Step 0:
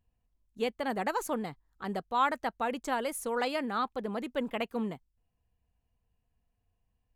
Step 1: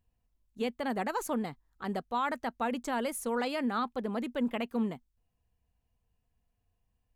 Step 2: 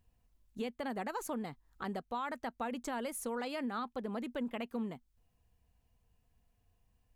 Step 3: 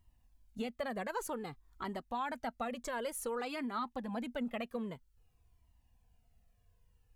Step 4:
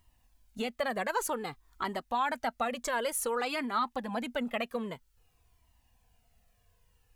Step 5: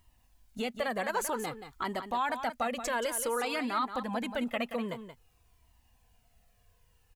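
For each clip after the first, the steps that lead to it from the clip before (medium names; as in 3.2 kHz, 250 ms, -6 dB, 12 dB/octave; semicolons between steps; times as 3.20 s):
dynamic bell 240 Hz, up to +7 dB, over -51 dBFS, Q 6.5; peak limiter -22 dBFS, peak gain reduction 6 dB
compression 2.5:1, threshold -45 dBFS, peak gain reduction 12.5 dB; trim +4.5 dB
Shepard-style flanger falling 0.53 Hz; trim +5 dB
bass shelf 400 Hz -9 dB; trim +9 dB
in parallel at -2 dB: peak limiter -28.5 dBFS, peak gain reduction 9.5 dB; on the sum: delay 178 ms -10 dB; trim -3.5 dB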